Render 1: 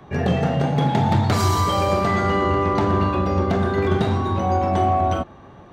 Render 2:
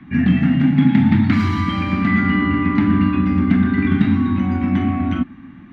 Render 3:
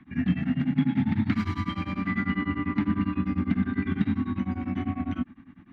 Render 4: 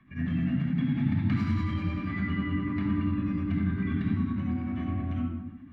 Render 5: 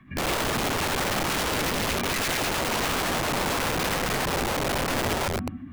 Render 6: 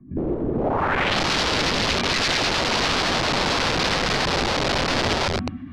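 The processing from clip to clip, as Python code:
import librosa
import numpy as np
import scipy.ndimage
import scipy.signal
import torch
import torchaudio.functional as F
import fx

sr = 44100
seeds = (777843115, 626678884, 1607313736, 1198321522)

y1 = fx.curve_eq(x, sr, hz=(130.0, 270.0, 450.0, 2100.0, 7900.0), db=(0, 15, -23, 8, -22))
y2 = y1 * np.abs(np.cos(np.pi * 10.0 * np.arange(len(y1)) / sr))
y2 = y2 * 10.0 ** (-8.0 / 20.0)
y3 = fx.room_shoebox(y2, sr, seeds[0], volume_m3=4000.0, walls='furnished', distance_m=5.7)
y3 = y3 * 10.0 ** (-8.0 / 20.0)
y4 = (np.mod(10.0 ** (29.0 / 20.0) * y3 + 1.0, 2.0) - 1.0) / 10.0 ** (29.0 / 20.0)
y4 = y4 * 10.0 ** (7.5 / 20.0)
y5 = fx.filter_sweep_lowpass(y4, sr, from_hz=350.0, to_hz=4700.0, start_s=0.52, end_s=1.19, q=2.0)
y5 = y5 * 10.0 ** (3.5 / 20.0)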